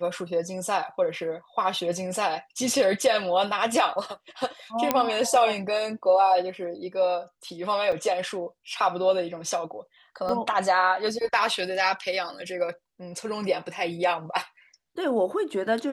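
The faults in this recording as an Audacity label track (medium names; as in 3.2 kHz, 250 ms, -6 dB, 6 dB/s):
4.910000	4.910000	pop -6 dBFS
7.920000	7.920000	dropout 4.7 ms
10.290000	10.290000	dropout 3.2 ms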